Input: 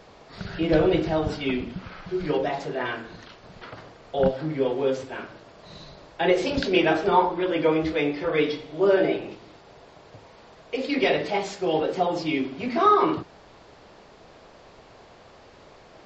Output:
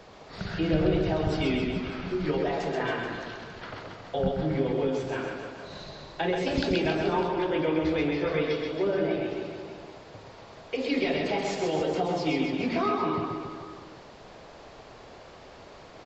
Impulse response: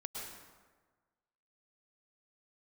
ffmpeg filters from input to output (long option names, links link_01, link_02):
-filter_complex "[0:a]acrossover=split=220[link_01][link_02];[link_02]acompressor=threshold=-27dB:ratio=6[link_03];[link_01][link_03]amix=inputs=2:normalize=0,aecho=1:1:130|273|430.3|603.3|793.7:0.631|0.398|0.251|0.158|0.1"